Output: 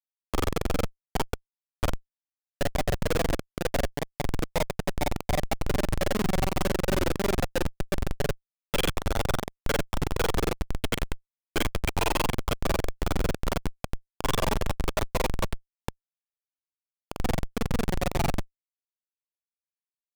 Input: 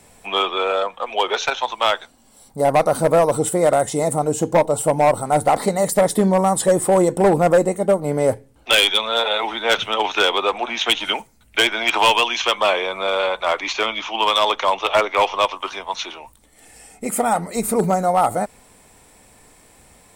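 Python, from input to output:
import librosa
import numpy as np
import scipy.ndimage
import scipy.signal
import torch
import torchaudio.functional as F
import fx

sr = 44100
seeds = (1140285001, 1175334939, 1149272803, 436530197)

y = x + 10.0 ** (-8.0 / 20.0) * np.pad(x, (int(98 * sr / 1000.0), 0))[:len(x)]
y = fx.granulator(y, sr, seeds[0], grain_ms=47.0, per_s=22.0, spray_ms=35.0, spread_st=0)
y = fx.schmitt(y, sr, flips_db=-15.5)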